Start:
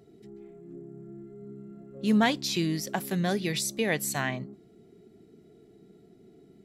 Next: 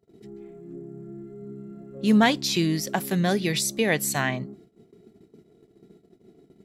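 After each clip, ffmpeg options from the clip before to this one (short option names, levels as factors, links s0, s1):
-af "agate=range=0.0794:threshold=0.002:ratio=16:detection=peak,volume=1.68"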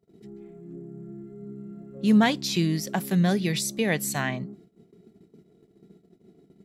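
-af "equalizer=f=180:t=o:w=0.51:g=6,volume=0.708"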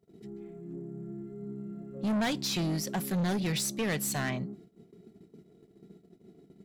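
-af "asoftclip=type=tanh:threshold=0.0473"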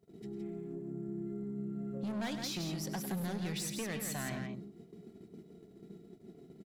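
-filter_complex "[0:a]acompressor=threshold=0.01:ratio=5,asplit=2[s0][s1];[s1]aecho=0:1:102|166.2:0.251|0.501[s2];[s0][s2]amix=inputs=2:normalize=0,volume=1.12"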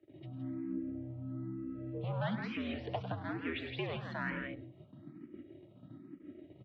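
-filter_complex "[0:a]highpass=f=250:t=q:w=0.5412,highpass=f=250:t=q:w=1.307,lowpass=f=3300:t=q:w=0.5176,lowpass=f=3300:t=q:w=0.7071,lowpass=f=3300:t=q:w=1.932,afreqshift=-80,asplit=2[s0][s1];[s1]afreqshift=1.1[s2];[s0][s2]amix=inputs=2:normalize=1,volume=2.24"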